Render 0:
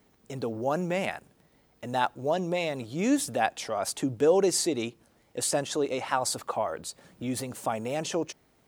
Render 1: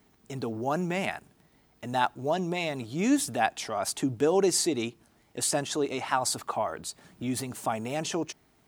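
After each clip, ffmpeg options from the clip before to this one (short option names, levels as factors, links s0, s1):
-af "equalizer=f=520:w=7.6:g=-13,volume=1.12"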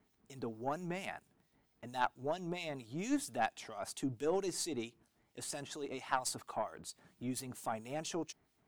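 -filter_complex "[0:a]acrossover=split=2400[s0][s1];[s0]aeval=exprs='val(0)*(1-0.7/2+0.7/2*cos(2*PI*4.4*n/s))':c=same[s2];[s1]aeval=exprs='val(0)*(1-0.7/2-0.7/2*cos(2*PI*4.4*n/s))':c=same[s3];[s2][s3]amix=inputs=2:normalize=0,aeval=exprs='0.282*(cos(1*acos(clip(val(0)/0.282,-1,1)))-cos(1*PI/2))+0.0251*(cos(3*acos(clip(val(0)/0.282,-1,1)))-cos(3*PI/2))+0.0158*(cos(4*acos(clip(val(0)/0.282,-1,1)))-cos(4*PI/2))':c=same,volume=0.562"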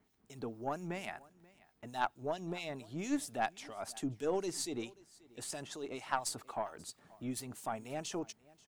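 -af "aecho=1:1:534:0.0708"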